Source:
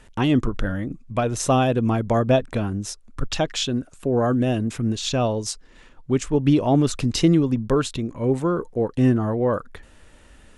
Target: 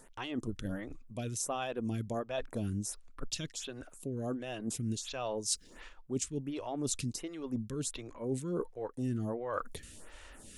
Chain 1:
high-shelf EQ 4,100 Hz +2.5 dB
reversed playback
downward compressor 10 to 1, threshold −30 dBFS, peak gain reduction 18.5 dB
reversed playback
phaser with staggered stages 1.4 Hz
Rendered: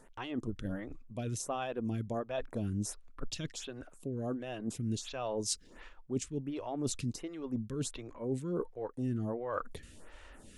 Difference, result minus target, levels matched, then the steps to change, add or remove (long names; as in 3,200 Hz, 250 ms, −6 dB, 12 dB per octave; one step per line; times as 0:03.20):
8,000 Hz band −3.0 dB
change: high-shelf EQ 4,100 Hz +12.5 dB